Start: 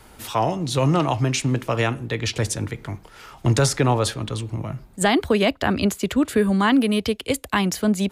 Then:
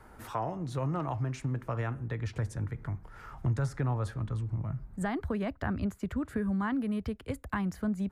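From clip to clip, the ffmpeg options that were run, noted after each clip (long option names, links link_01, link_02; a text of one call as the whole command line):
ffmpeg -i in.wav -af "asubboost=boost=4:cutoff=180,acompressor=threshold=-30dB:ratio=2,highshelf=frequency=2200:width_type=q:width=1.5:gain=-10,volume=-6dB" out.wav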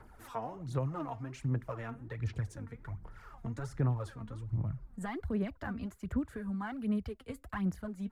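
ffmpeg -i in.wav -af "aphaser=in_gain=1:out_gain=1:delay=4.4:decay=0.63:speed=1.3:type=sinusoidal,volume=-7.5dB" out.wav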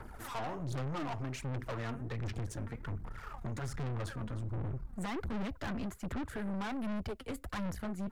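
ffmpeg -i in.wav -af "aeval=exprs='(tanh(178*val(0)+0.55)-tanh(0.55))/178':channel_layout=same,volume=9.5dB" out.wav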